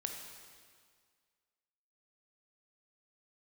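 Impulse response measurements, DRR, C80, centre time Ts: 2.5 dB, 5.5 dB, 55 ms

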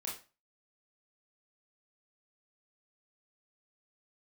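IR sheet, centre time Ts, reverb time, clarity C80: 32 ms, 0.35 s, 12.5 dB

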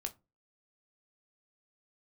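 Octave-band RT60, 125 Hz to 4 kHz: 0.40, 0.35, 0.30, 0.25, 0.20, 0.15 seconds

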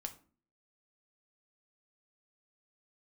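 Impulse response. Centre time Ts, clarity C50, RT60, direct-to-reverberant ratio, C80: 7 ms, 14.0 dB, 0.40 s, 5.0 dB, 19.0 dB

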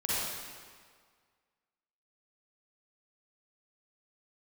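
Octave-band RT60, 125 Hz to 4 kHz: 1.6, 1.7, 1.8, 1.8, 1.6, 1.5 seconds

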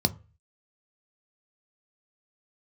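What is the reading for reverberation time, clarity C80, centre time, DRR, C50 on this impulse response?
0.35 s, 27.0 dB, 3 ms, 9.0 dB, 21.5 dB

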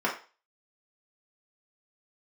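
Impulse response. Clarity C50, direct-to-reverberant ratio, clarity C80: 8.0 dB, −5.0 dB, 13.5 dB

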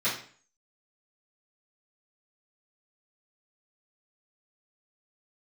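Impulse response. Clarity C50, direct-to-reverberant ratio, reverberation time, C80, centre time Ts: 5.5 dB, −14.0 dB, 0.45 s, 10.5 dB, 32 ms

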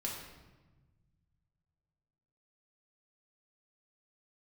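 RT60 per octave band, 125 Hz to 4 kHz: 2.9, 2.0, 1.3, 1.1, 1.0, 0.85 seconds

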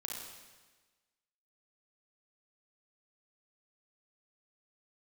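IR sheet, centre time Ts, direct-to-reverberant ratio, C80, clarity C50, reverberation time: 75 ms, −1.5 dB, 3.0 dB, −0.5 dB, 1.3 s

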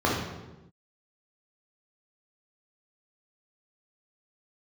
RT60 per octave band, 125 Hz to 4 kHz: 1.3, 1.3, 1.1, 0.95, 0.85, 0.75 seconds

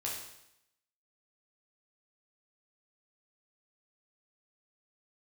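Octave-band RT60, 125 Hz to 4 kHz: 0.80, 0.80, 0.80, 0.80, 0.80, 0.80 seconds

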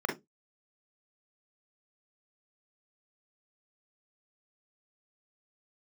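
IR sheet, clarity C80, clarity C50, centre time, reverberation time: 21.0 dB, 10.0 dB, 24 ms, 0.20 s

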